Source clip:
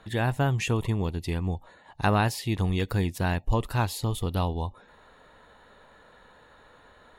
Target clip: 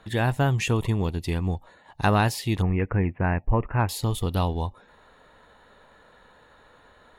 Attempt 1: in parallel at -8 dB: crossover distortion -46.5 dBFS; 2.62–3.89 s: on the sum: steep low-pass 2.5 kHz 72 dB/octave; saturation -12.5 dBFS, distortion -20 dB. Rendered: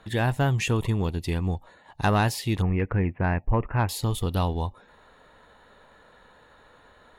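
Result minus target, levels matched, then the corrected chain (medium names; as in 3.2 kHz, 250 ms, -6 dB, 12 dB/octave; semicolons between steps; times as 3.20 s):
saturation: distortion +11 dB
in parallel at -8 dB: crossover distortion -46.5 dBFS; 2.62–3.89 s: on the sum: steep low-pass 2.5 kHz 72 dB/octave; saturation -6 dBFS, distortion -31 dB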